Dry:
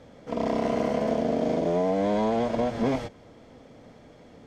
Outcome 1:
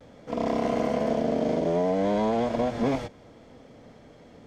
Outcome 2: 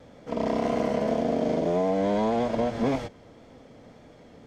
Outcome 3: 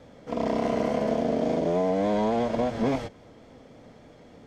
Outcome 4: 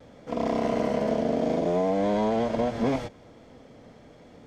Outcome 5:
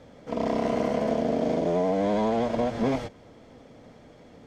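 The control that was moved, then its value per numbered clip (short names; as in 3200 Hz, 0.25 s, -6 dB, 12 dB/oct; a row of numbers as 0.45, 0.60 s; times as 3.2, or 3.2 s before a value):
vibrato, rate: 0.44, 1.8, 3.5, 0.72, 12 Hz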